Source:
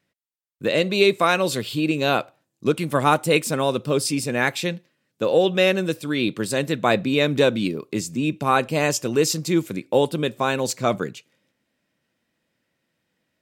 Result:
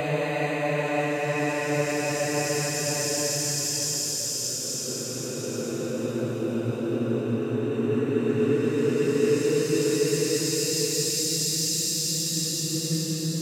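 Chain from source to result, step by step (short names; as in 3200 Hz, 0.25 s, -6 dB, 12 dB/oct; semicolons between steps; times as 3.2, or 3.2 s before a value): limiter -15.5 dBFS, peak gain reduction 11.5 dB; Paulstretch 23×, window 0.25 s, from 8.79; three-band expander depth 40%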